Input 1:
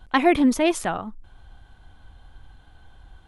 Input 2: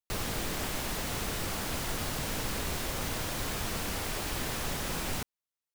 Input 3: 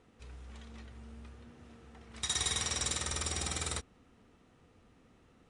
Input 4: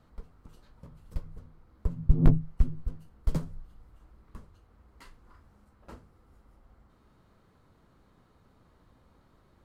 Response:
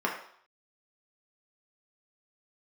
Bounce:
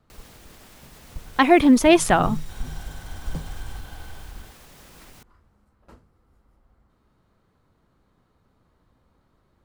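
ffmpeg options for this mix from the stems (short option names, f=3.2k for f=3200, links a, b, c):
-filter_complex "[0:a]dynaudnorm=f=180:g=7:m=10dB,adelay=1250,volume=2.5dB[a];[1:a]alimiter=level_in=7.5dB:limit=-24dB:level=0:latency=1:release=197,volume=-7.5dB,acrusher=bits=7:mix=0:aa=0.000001,volume=-7.5dB[b];[2:a]aeval=exprs='(tanh(126*val(0)+0.8)-tanh(0.8))/126':c=same,volume=-7.5dB[c];[3:a]alimiter=limit=-17.5dB:level=0:latency=1,volume=-2.5dB[d];[a][b][c][d]amix=inputs=4:normalize=0"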